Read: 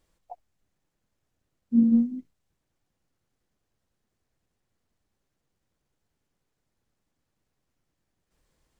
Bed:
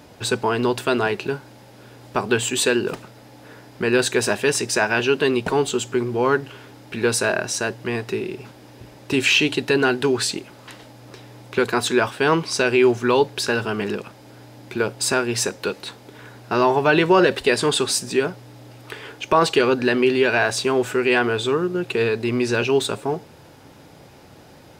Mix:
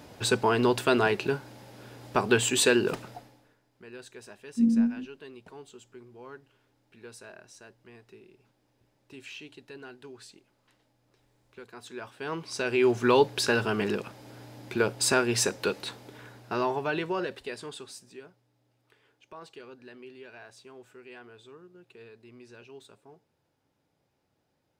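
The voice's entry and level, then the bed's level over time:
2.85 s, −3.0 dB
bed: 0:03.15 −3 dB
0:03.58 −27 dB
0:11.68 −27 dB
0:13.06 −3.5 dB
0:15.94 −3.5 dB
0:18.50 −29.5 dB

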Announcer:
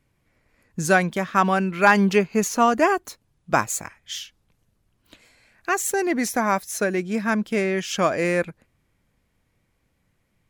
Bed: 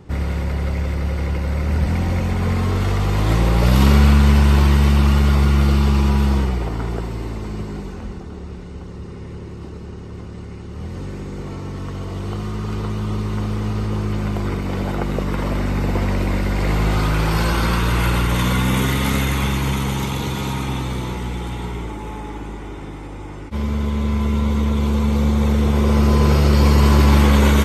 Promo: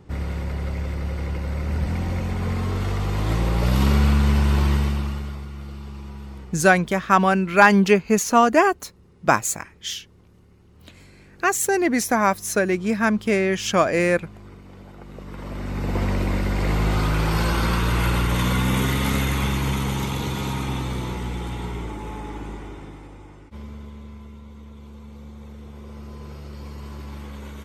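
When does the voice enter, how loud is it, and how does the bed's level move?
5.75 s, +2.5 dB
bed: 0:04.75 −5.5 dB
0:05.48 −20.5 dB
0:14.96 −20.5 dB
0:16.01 −3 dB
0:22.53 −3 dB
0:24.42 −23.5 dB

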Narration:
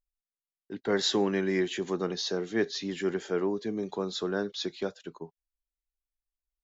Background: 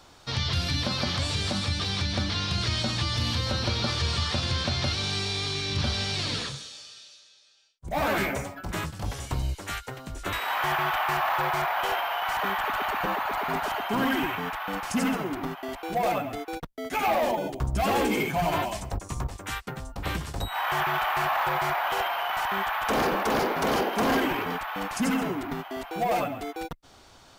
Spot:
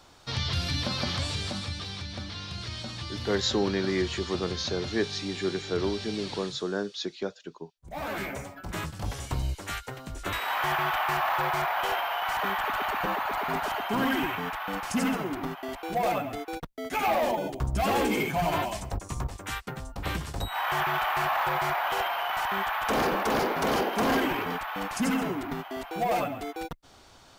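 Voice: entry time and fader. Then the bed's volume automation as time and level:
2.40 s, 0.0 dB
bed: 0:01.19 −2 dB
0:02.04 −9.5 dB
0:07.90 −9.5 dB
0:08.97 −1 dB

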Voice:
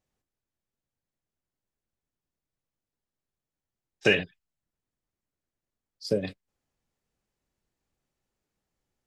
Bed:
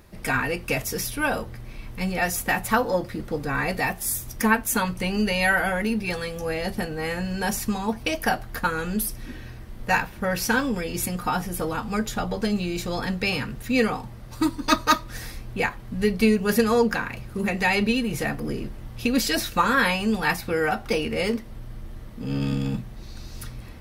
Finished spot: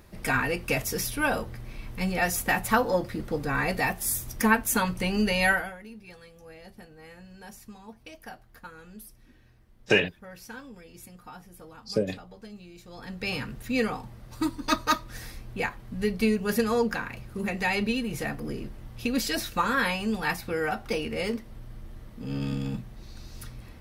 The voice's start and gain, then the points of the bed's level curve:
5.85 s, +0.5 dB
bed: 0:05.51 −1.5 dB
0:05.78 −20 dB
0:12.84 −20 dB
0:13.32 −5 dB

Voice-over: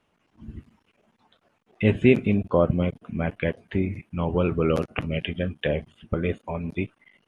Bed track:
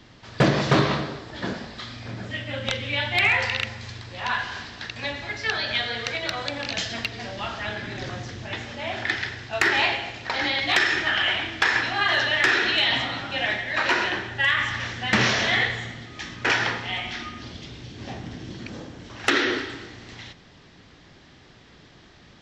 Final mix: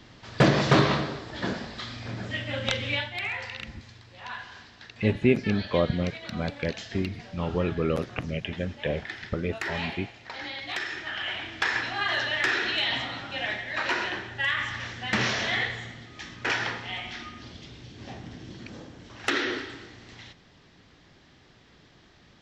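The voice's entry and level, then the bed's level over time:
3.20 s, −4.0 dB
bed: 0:02.93 −0.5 dB
0:03.13 −12 dB
0:11.02 −12 dB
0:11.63 −5.5 dB

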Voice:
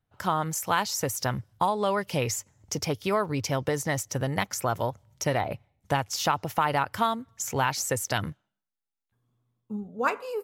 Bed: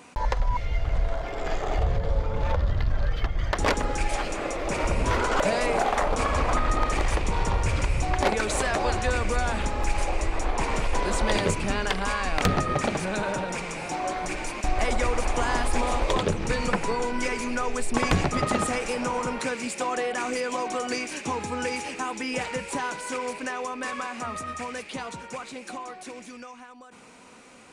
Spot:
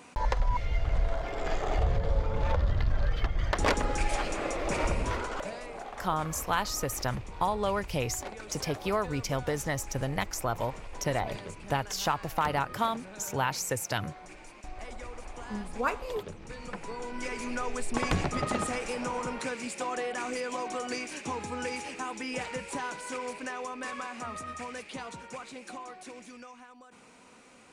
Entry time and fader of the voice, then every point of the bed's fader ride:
5.80 s, −3.5 dB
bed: 0:04.84 −2.5 dB
0:05.67 −17.5 dB
0:16.46 −17.5 dB
0:17.50 −5.5 dB

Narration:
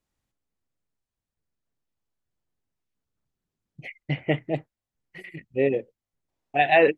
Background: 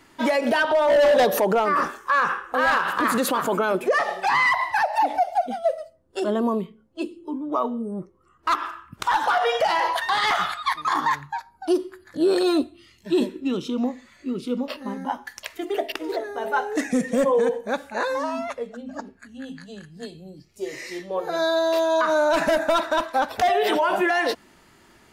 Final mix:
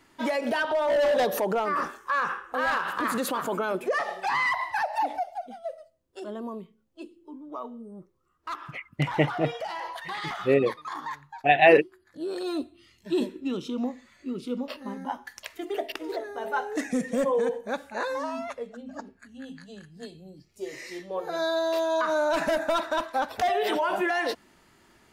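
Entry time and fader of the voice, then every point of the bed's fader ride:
4.90 s, +1.0 dB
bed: 0:05.10 −6 dB
0:05.36 −13 dB
0:12.31 −13 dB
0:12.85 −5 dB

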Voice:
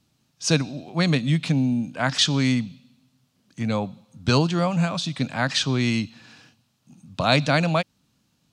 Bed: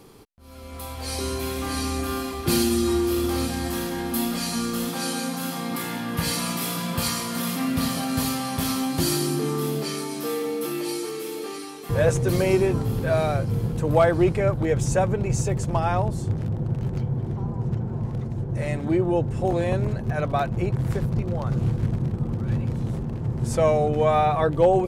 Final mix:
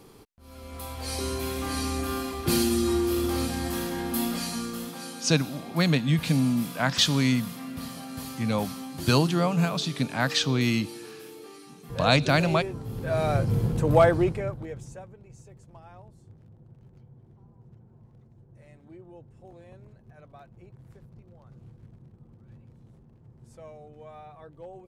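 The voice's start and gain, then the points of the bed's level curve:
4.80 s, −2.0 dB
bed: 0:04.31 −2.5 dB
0:05.19 −12.5 dB
0:12.80 −12.5 dB
0:13.36 0 dB
0:14.06 0 dB
0:15.16 −26 dB

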